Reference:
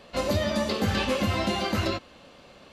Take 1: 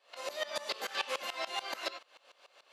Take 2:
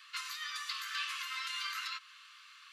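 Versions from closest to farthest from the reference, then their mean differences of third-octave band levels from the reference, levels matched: 1, 2; 9.0, 20.0 decibels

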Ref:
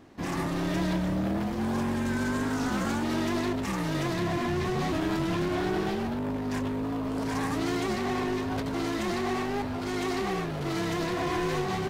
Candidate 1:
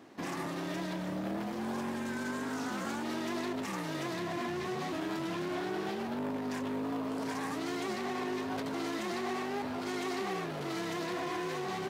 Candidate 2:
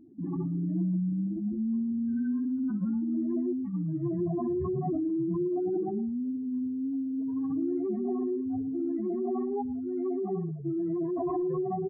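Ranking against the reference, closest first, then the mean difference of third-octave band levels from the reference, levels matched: 1, 2; 2.5, 23.5 decibels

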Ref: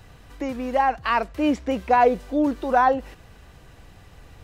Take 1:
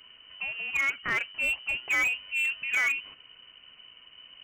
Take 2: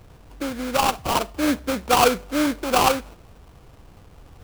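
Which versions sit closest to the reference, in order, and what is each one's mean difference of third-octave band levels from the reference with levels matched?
2, 1; 7.0, 10.5 decibels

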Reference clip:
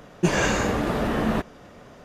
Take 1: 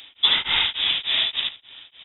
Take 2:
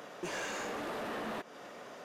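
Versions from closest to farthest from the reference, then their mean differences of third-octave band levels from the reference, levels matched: 2, 1; 8.0, 16.5 decibels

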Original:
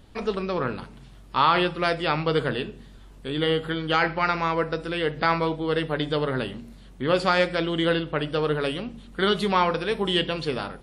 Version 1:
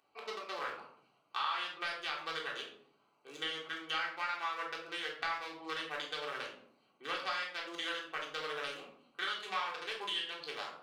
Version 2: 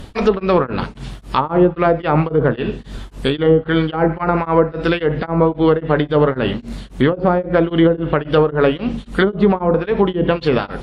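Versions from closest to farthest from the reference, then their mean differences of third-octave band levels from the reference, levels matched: 2, 1; 6.5, 10.0 decibels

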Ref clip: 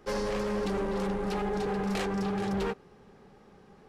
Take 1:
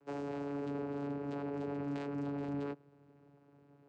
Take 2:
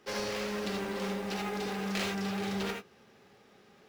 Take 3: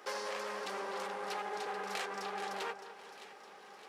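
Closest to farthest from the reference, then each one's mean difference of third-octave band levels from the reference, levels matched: 2, 1, 3; 5.5, 7.5, 10.0 decibels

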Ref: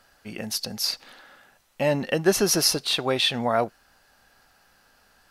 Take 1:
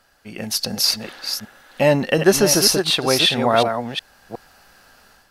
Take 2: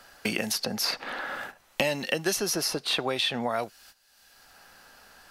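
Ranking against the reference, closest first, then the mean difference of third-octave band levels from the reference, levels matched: 1, 2; 4.0, 7.0 decibels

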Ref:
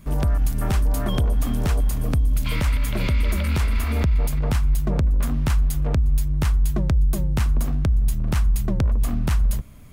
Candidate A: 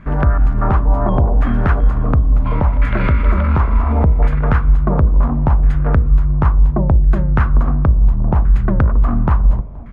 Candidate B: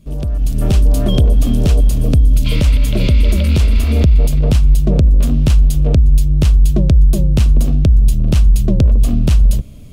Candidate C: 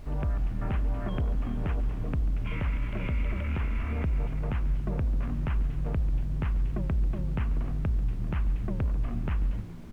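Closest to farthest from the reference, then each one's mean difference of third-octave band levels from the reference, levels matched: B, C, A; 4.0, 6.5, 9.5 decibels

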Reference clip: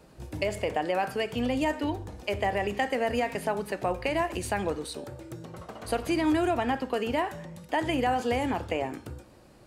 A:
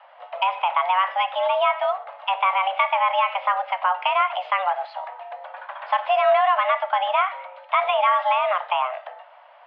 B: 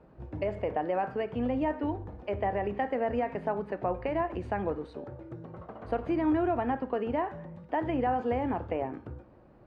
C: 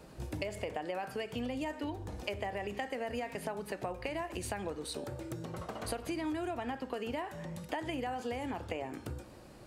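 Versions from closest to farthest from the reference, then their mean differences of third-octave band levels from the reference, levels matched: C, B, A; 4.0, 7.0, 18.0 decibels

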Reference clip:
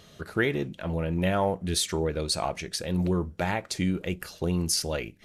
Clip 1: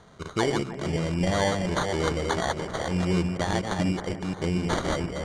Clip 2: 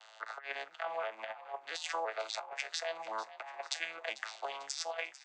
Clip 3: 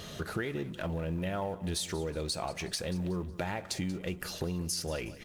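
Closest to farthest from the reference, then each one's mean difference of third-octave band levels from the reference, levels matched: 3, 1, 2; 6.5, 9.5, 16.0 decibels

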